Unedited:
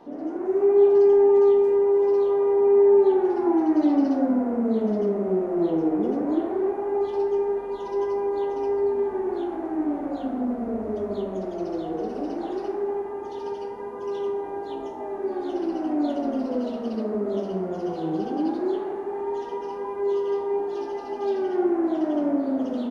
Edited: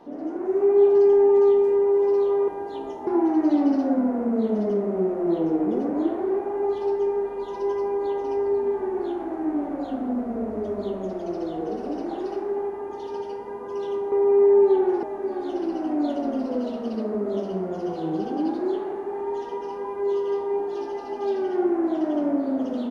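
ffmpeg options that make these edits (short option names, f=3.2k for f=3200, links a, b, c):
-filter_complex "[0:a]asplit=5[a][b][c][d][e];[a]atrim=end=2.482[f];[b]atrim=start=14.438:end=15.032[g];[c]atrim=start=3.388:end=14.442[h];[d]atrim=start=2.478:end=3.392[i];[e]atrim=start=15.028[j];[f][g]acrossfade=d=0.004:c1=hsin:c2=hsin[k];[k][h]acrossfade=d=0.004:c1=hsin:c2=hsin[l];[l][i]acrossfade=d=0.004:c1=hsin:c2=hsin[m];[m][j]acrossfade=d=0.004:c1=hsin:c2=hsin"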